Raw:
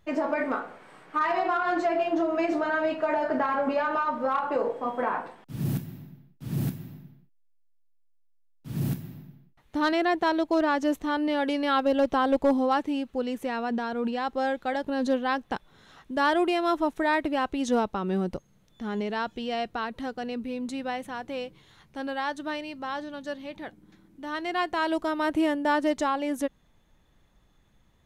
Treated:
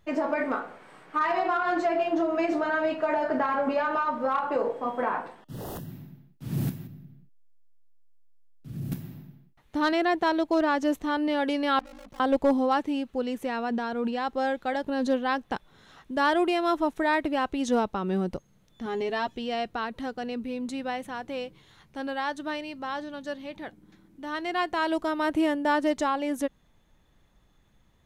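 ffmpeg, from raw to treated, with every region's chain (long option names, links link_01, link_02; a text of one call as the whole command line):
ffmpeg -i in.wav -filter_complex "[0:a]asettb=1/sr,asplit=3[link_01][link_02][link_03];[link_01]atrim=end=5.404[link_04];[link_02]atrim=start=5.4:end=5.91,asetpts=PTS-STARTPTS,afade=type=in:duration=0.004:curve=qsin,afade=type=out:start_time=0.506:duration=0.004:curve=qsin,bandreject=frequency=305.6:width_type=h:width=4,bandreject=frequency=611.2:width_type=h:width=4,bandreject=frequency=916.8:width_type=h:width=4,bandreject=frequency=1222.4:width_type=h:width=4,bandreject=frequency=1528:width_type=h:width=4,bandreject=frequency=1833.6:width_type=h:width=4,bandreject=frequency=2139.2:width_type=h:width=4,bandreject=frequency=2444.8:width_type=h:width=4,bandreject=frequency=2750.4:width_type=h:width=4,bandreject=frequency=3056:width_type=h:width=4,bandreject=frequency=3361.6:width_type=h:width=4,bandreject=frequency=3667.2:width_type=h:width=4,bandreject=frequency=3972.8:width_type=h:width=4,bandreject=frequency=4278.4:width_type=h:width=4,bandreject=frequency=4584:width_type=h:width=4,bandreject=frequency=4889.6:width_type=h:width=4,bandreject=frequency=5195.2:width_type=h:width=4,bandreject=frequency=5500.8:width_type=h:width=4,bandreject=frequency=5806.4:width_type=h:width=4,bandreject=frequency=6112:width_type=h:width=4,bandreject=frequency=6417.6:width_type=h:width=4,bandreject=frequency=6723.2:width_type=h:width=4,bandreject=frequency=7028.8:width_type=h:width=4,bandreject=frequency=7334.4:width_type=h:width=4,bandreject=frequency=7640:width_type=h:width=4,bandreject=frequency=7945.6:width_type=h:width=4,bandreject=frequency=8251.2:width_type=h:width=4,bandreject=frequency=8556.8:width_type=h:width=4,bandreject=frequency=8862.4:width_type=h:width=4,bandreject=frequency=9168:width_type=h:width=4,bandreject=frequency=9473.6:width_type=h:width=4,bandreject=frequency=9779.2:width_type=h:width=4,bandreject=frequency=10084.8:width_type=h:width=4,bandreject=frequency=10390.4:width_type=h:width=4,bandreject=frequency=10696:width_type=h:width=4,bandreject=frequency=11001.6:width_type=h:width=4,bandreject=frequency=11307.2:width_type=h:width=4,bandreject=frequency=11612.8:width_type=h:width=4,bandreject=frequency=11918.4:width_type=h:width=4,aeval=exprs='0.0251*(abs(mod(val(0)/0.0251+3,4)-2)-1)':channel_layout=same,asuperstop=centerf=2300:order=4:qfactor=4[link_05];[link_03]atrim=start=5.906[link_06];[link_04][link_05]acrossfade=duration=0.004:curve1=hsin:curve2=qsin[link_07];[link_07][link_06]acrossfade=duration=0.004:curve1=qsin:curve2=hsin,asettb=1/sr,asplit=3[link_08][link_09][link_10];[link_08]atrim=end=6.874[link_11];[link_09]atrim=start=6.87:end=8.92,asetpts=PTS-STARTPTS,afade=type=in:duration=0.004:curve=qsin,afade=type=out:start_time=2.046:duration=0.004:curve=qsin,lowshelf=frequency=260:gain=9,bandreject=frequency=920:width=5.8,acompressor=threshold=-54dB:ratio=1.5:attack=3.2:release=140:knee=1:detection=peak[link_12];[link_10]atrim=start=8.916[link_13];[link_11][link_12]acrossfade=duration=0.004:curve1=hsin:curve2=qsin[link_14];[link_14][link_13]acrossfade=duration=0.004:curve1=qsin:curve2=hsin,asettb=1/sr,asplit=3[link_15][link_16][link_17];[link_15]atrim=end=11.794[link_18];[link_16]atrim=start=11.79:end=12.2,asetpts=PTS-STARTPTS,afade=type=in:duration=0.004:curve=qsin,afade=type=out:start_time=0.406:duration=0.004:curve=qsin,aeval=exprs='(tanh(158*val(0)+0.4)-tanh(0.4))/158':channel_layout=same,aeval=exprs='val(0)*sin(2*PI*26*n/s)':channel_layout=same[link_19];[link_17]atrim=start=12.196[link_20];[link_18][link_19]acrossfade=duration=0.004:curve1=hsin:curve2=qsin[link_21];[link_21][link_20]acrossfade=duration=0.004:curve1=qsin:curve2=hsin,asettb=1/sr,asplit=3[link_22][link_23][link_24];[link_22]atrim=end=18.854[link_25];[link_23]atrim=start=18.85:end=19.35,asetpts=PTS-STARTPTS,afade=type=in:duration=0.004:curve=qsin,afade=type=out:start_time=0.496:duration=0.004:curve=qsin,bandreject=frequency=1400:width=8.2,aecho=1:1:7.4:0.68,atrim=end_sample=22050[link_26];[link_24]atrim=start=19.346[link_27];[link_25][link_26]acrossfade=duration=0.004:curve1=hsin:curve2=qsin[link_28];[link_28][link_27]acrossfade=duration=0.004:curve1=qsin:curve2=hsin" out.wav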